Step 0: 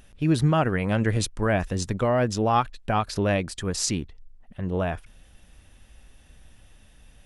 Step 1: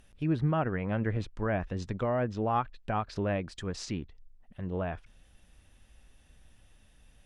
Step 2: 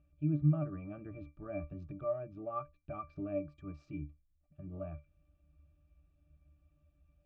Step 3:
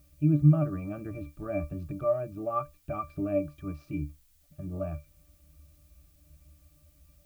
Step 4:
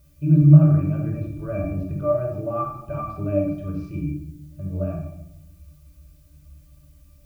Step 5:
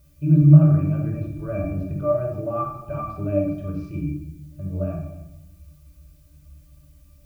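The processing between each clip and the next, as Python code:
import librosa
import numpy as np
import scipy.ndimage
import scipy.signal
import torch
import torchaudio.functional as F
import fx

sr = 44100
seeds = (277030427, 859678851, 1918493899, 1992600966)

y1 = fx.env_lowpass_down(x, sr, base_hz=2200.0, full_db=-20.5)
y1 = F.gain(torch.from_numpy(y1), -7.0).numpy()
y2 = fx.octave_resonator(y1, sr, note='D', decay_s=0.19)
y2 = F.gain(torch.from_numpy(y2), 3.0).numpy()
y3 = fx.dmg_noise_colour(y2, sr, seeds[0], colour='blue', level_db=-76.0)
y3 = F.gain(torch.from_numpy(y3), 8.5).numpy()
y4 = fx.room_shoebox(y3, sr, seeds[1], volume_m3=2500.0, walls='furnished', distance_m=5.0)
y5 = y4 + 10.0 ** (-21.5 / 20.0) * np.pad(y4, (int(279 * sr / 1000.0), 0))[:len(y4)]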